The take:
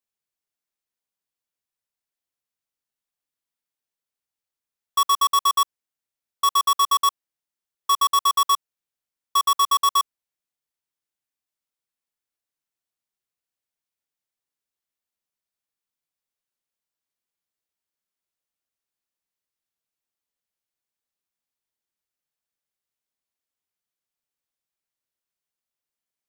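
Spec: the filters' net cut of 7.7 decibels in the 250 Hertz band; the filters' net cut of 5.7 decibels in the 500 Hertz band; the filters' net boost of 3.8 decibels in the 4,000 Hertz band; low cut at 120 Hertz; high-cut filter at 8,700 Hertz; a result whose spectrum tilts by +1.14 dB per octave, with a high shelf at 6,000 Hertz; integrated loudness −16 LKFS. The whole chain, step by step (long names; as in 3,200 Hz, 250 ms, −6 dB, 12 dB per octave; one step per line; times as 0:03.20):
high-pass filter 120 Hz
low-pass filter 8,700 Hz
parametric band 250 Hz −7.5 dB
parametric band 500 Hz −4.5 dB
parametric band 4,000 Hz +3.5 dB
high-shelf EQ 6,000 Hz +5 dB
level +4 dB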